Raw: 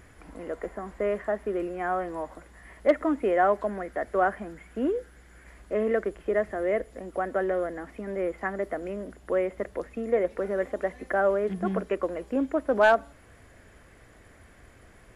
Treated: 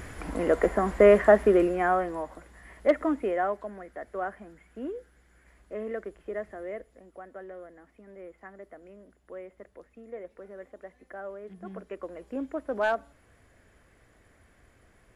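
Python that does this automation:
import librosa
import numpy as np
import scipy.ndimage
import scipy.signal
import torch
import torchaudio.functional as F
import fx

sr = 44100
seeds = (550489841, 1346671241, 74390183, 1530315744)

y = fx.gain(x, sr, db=fx.line((1.4, 11.0), (2.25, -1.0), (3.1, -1.0), (3.65, -9.0), (6.51, -9.0), (7.25, -16.0), (11.4, -16.0), (12.34, -7.0)))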